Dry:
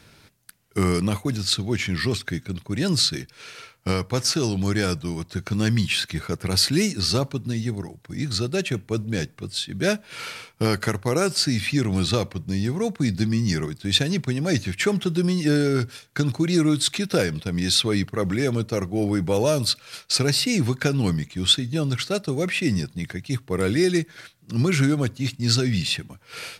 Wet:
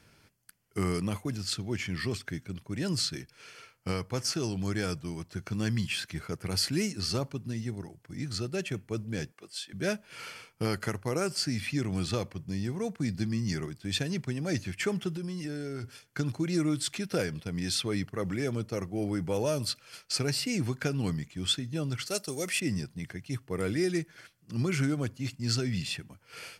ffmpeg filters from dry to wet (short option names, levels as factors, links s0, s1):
-filter_complex "[0:a]asettb=1/sr,asplit=3[s0][s1][s2];[s0]atrim=end=9.324[s3];[s1]atrim=start=9.32:end=9.73,asetpts=PTS-STARTPTS,afade=t=in:d=0.004:c=qsin,afade=t=out:st=0.406:d=0.004:c=qsin,highpass=450[s4];[s2]atrim=start=9.726[s5];[s3][s4]acrossfade=d=0.004:c1=hsin:c2=qsin[s6];[s6][s5]acrossfade=d=0.004:c1=qsin:c2=hsin,asettb=1/sr,asplit=3[s7][s8][s9];[s7]atrim=end=15.094[s10];[s8]atrim=start=15.09:end=15.84,asetpts=PTS-STARTPTS,afade=t=in:d=0.004:c=qsin,afade=t=out:st=0.746:d=0.004:c=qsin,acompressor=threshold=0.0631:ratio=6:attack=3.2:release=140:knee=1:detection=peak[s11];[s9]atrim=start=15.836[s12];[s10][s11]acrossfade=d=0.004:c1=hsin:c2=qsin[s13];[s13][s12]acrossfade=d=0.004:c1=qsin:c2=hsin,asettb=1/sr,asplit=3[s14][s15][s16];[s14]atrim=end=22.064[s17];[s15]atrim=start=22.06:end=22.6,asetpts=PTS-STARTPTS,afade=t=in:d=0.004:c=qsin,afade=t=out:st=0.536:d=0.004:c=qsin,bass=f=250:g=-7,treble=f=4000:g=14[s18];[s16]atrim=start=22.596[s19];[s17][s18]acrossfade=d=0.004:c1=hsin:c2=qsin[s20];[s20][s19]acrossfade=d=0.004:c1=qsin:c2=hsin,bandreject=f=3800:w=6.2,volume=0.376"